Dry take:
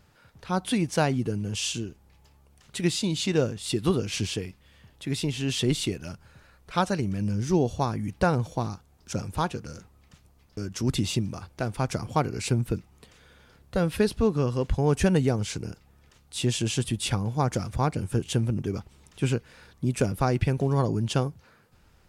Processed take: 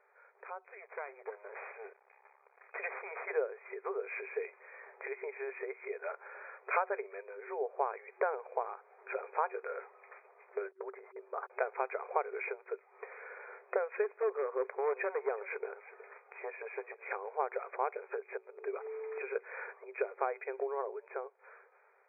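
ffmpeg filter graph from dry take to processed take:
-filter_complex "[0:a]asettb=1/sr,asplit=3[a][b][c];[a]atrim=end=0.694[d];[b]atrim=start=0.69:end=3.31,asetpts=PTS-STARTPTS,afade=t=in:d=0.004:c=qsin,afade=t=out:st=2.616:d=0.004:c=qsin,equalizer=f=180:t=o:w=2.4:g=-14.5,aeval=exprs='max(val(0),0)':c=same[e];[c]atrim=start=3.306[f];[d][e]acrossfade=d=0.004:c1=hsin:c2=qsin[g];[g][f]acrossfade=d=0.004:c1=qsin:c2=hsin,asettb=1/sr,asplit=3[h][i][j];[h]atrim=end=10.714[k];[i]atrim=start=10.71:end=11.5,asetpts=PTS-STARTPTS,afade=t=in:d=0.004:c=qsin,afade=t=out:st=0.786:d=0.004:c=qsin,lowpass=f=1.7k:w=0.5412,lowpass=f=1.7k:w=1.3066,agate=range=-39dB:threshold=-42dB:ratio=16:release=100:detection=peak[l];[j]atrim=start=11.496[m];[k][l]acrossfade=d=0.004:c1=hsin:c2=qsin[n];[n][m]acrossfade=d=0.004:c1=qsin:c2=hsin,asettb=1/sr,asplit=3[o][p][q];[o]atrim=end=14.044[r];[p]atrim=start=14.04:end=17.34,asetpts=PTS-STARTPTS,afade=t=in:d=0.004:c=qsin,afade=t=out:st=3.296:d=0.004:c=qsin,asoftclip=type=hard:threshold=-19.5dB,aecho=1:1:370:0.0794,atrim=end_sample=145530[s];[q]atrim=start=17.336[t];[r][s]acrossfade=d=0.004:c1=hsin:c2=qsin[u];[u][t]acrossfade=d=0.004:c1=qsin:c2=hsin,asettb=1/sr,asplit=3[v][w][x];[v]atrim=end=18.374[y];[w]atrim=start=18.37:end=19.36,asetpts=PTS-STARTPTS,afade=t=in:d=0.004:c=qsin,afade=t=out:st=0.986:d=0.004:c=qsin,aeval=exprs='val(0)+0.00355*sin(2*PI*440*n/s)':c=same,acompressor=threshold=-40dB:ratio=2.5:attack=3.2:release=140:knee=1:detection=peak[z];[x]atrim=start=19.356[aa];[y][z]acrossfade=d=0.004:c1=hsin:c2=qsin[ab];[ab][aa]acrossfade=d=0.004:c1=qsin:c2=hsin,acompressor=threshold=-36dB:ratio=12,afftfilt=real='re*between(b*sr/4096,380,2500)':imag='im*between(b*sr/4096,380,2500)':win_size=4096:overlap=0.75,dynaudnorm=f=440:g=7:m=12.5dB,volume=-2dB"

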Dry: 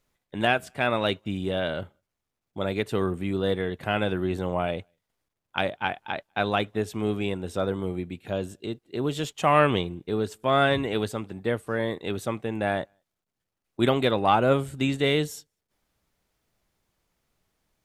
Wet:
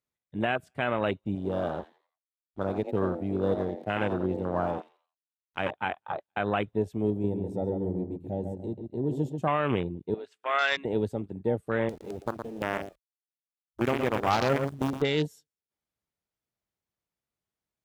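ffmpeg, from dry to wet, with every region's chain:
-filter_complex "[0:a]asettb=1/sr,asplit=3[a][b][c];[a]atrim=end=1.354[d];[b]atrim=start=1.35:end=5.71,asetpts=PTS-STARTPTS,afade=t=in:d=0.004:c=qsin,afade=t=out:st=4.356:d=0.004:c=qsin,highpass=61,aeval=exprs='sgn(val(0))*max(abs(val(0))-0.0133,0)':c=same,asplit=5[e][f][g][h][i];[f]adelay=86,afreqshift=140,volume=-8dB[j];[g]adelay=172,afreqshift=280,volume=-17.9dB[k];[h]adelay=258,afreqshift=420,volume=-27.8dB[l];[i]adelay=344,afreqshift=560,volume=-37.7dB[m];[e][j][k][l][m]amix=inputs=5:normalize=0,atrim=end_sample=192276[n];[c]atrim=start=5.706[o];[d][n]acrossfade=d=0.004:c1=hsin:c2=qsin[p];[p][o]acrossfade=d=0.004:c1=qsin:c2=hsin,asettb=1/sr,asplit=3[q][r][s];[q]atrim=end=7.104[t];[r]atrim=start=7.1:end=9.48,asetpts=PTS-STARTPTS,afade=t=in:d=0.004:c=qsin,afade=t=out:st=2.376:d=0.004:c=qsin,equalizer=f=1.9k:w=0.44:g=-12,asplit=2[u][v];[v]adelay=137,lowpass=f=2k:p=1,volume=-5dB,asplit=2[w][x];[x]adelay=137,lowpass=f=2k:p=1,volume=0.42,asplit=2[y][z];[z]adelay=137,lowpass=f=2k:p=1,volume=0.42,asplit=2[aa][ab];[ab]adelay=137,lowpass=f=2k:p=1,volume=0.42,asplit=2[ac][ad];[ad]adelay=137,lowpass=f=2k:p=1,volume=0.42[ae];[u][w][y][aa][ac][ae]amix=inputs=6:normalize=0,atrim=end_sample=104958[af];[s]atrim=start=9.476[ag];[t][af]acrossfade=d=0.004:c1=hsin:c2=qsin[ah];[ah][ag]acrossfade=d=0.004:c1=qsin:c2=hsin,asettb=1/sr,asplit=3[ai][aj][ak];[ai]atrim=end=10.144[al];[aj]atrim=start=10.14:end=10.85,asetpts=PTS-STARTPTS,afade=t=in:d=0.004:c=qsin,afade=t=out:st=0.706:d=0.004:c=qsin,acontrast=28,bandpass=f=2.3k:t=q:w=1.3[am];[ak]atrim=start=10.846[an];[al][am]acrossfade=d=0.004:c1=hsin:c2=qsin[ao];[ao][an]acrossfade=d=0.004:c1=qsin:c2=hsin,asettb=1/sr,asplit=3[ap][aq][ar];[ap]atrim=end=11.894[as];[aq]atrim=start=11.89:end=15.02,asetpts=PTS-STARTPTS,afade=t=in:d=0.004:c=qsin,afade=t=out:st=3.126:d=0.004:c=qsin,lowpass=f=2.4k:p=1,acrusher=bits=4:dc=4:mix=0:aa=0.000001,aecho=1:1:115:0.335,atrim=end_sample=138033[at];[ar]atrim=start=15.016[au];[as][at]acrossfade=d=0.004:c1=hsin:c2=qsin[av];[av][au]acrossfade=d=0.004:c1=qsin:c2=hsin,afwtdn=0.0316,highpass=58,alimiter=limit=-14.5dB:level=0:latency=1:release=73"

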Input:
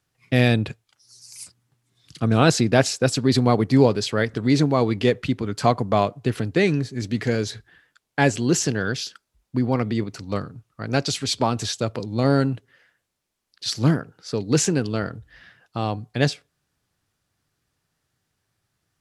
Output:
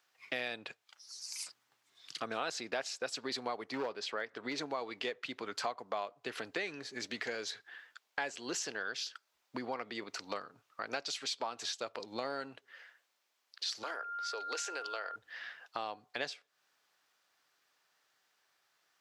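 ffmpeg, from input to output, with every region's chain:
-filter_complex "[0:a]asettb=1/sr,asplit=3[a][b][c];[a]atrim=end=3.714[d];[b]atrim=start=3.71:end=4.58,asetpts=PTS-STARTPTS,afade=t=in:d=0.004:c=qsin,afade=t=out:st=0.866:d=0.004:c=qsin,highpass=f=68:p=1,highshelf=f=4.4k:g=-9.5,asoftclip=type=hard:threshold=-10dB[e];[c]atrim=start=4.576[f];[d][e]acrossfade=d=0.004:c1=hsin:c2=qsin[g];[g][f]acrossfade=d=0.004:c1=qsin:c2=hsin,asettb=1/sr,asplit=3[h][i][j];[h]atrim=end=13.834[k];[i]atrim=start=13.83:end=15.16,asetpts=PTS-STARTPTS,afade=t=in:d=0.004:c=qsin,afade=t=out:st=1.326:d=0.004:c=qsin,highpass=f=420:w=0.5412,highpass=f=420:w=1.3066,acompressor=threshold=-28dB:ratio=2.5:attack=3.2:release=140:knee=1:detection=peak,aeval=exprs='val(0)+0.0141*sin(2*PI*1400*n/s)':c=same[l];[j]atrim=start=15.156[m];[k][l]acrossfade=d=0.004:c1=hsin:c2=qsin[n];[n][m]acrossfade=d=0.004:c1=qsin:c2=hsin,highpass=690,equalizer=f=10k:t=o:w=0.8:g=-10,acompressor=threshold=-42dB:ratio=4,volume=4dB"

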